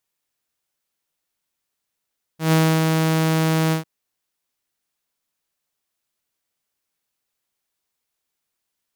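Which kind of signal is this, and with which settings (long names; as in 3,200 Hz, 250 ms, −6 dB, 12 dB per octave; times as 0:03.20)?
note with an ADSR envelope saw 160 Hz, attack 131 ms, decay 281 ms, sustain −3.5 dB, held 1.33 s, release 120 ms −10.5 dBFS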